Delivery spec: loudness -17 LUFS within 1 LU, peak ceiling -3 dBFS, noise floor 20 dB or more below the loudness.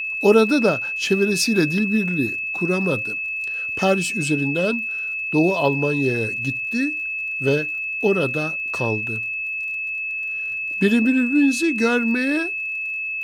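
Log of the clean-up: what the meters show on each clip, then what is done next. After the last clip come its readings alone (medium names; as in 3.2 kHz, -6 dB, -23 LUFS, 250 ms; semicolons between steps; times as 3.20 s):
tick rate 44 per s; steady tone 2.6 kHz; tone level -24 dBFS; loudness -20.5 LUFS; peak level -3.5 dBFS; loudness target -17.0 LUFS
-> de-click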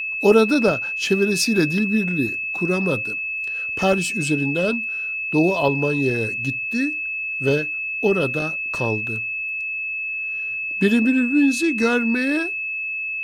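tick rate 0.076 per s; steady tone 2.6 kHz; tone level -24 dBFS
-> band-stop 2.6 kHz, Q 30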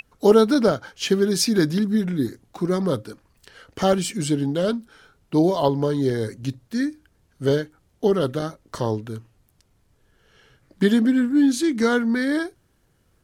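steady tone not found; loudness -22.0 LUFS; peak level -3.5 dBFS; loudness target -17.0 LUFS
-> trim +5 dB; peak limiter -3 dBFS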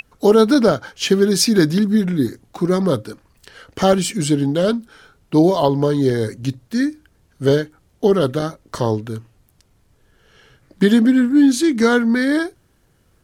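loudness -17.5 LUFS; peak level -3.0 dBFS; noise floor -59 dBFS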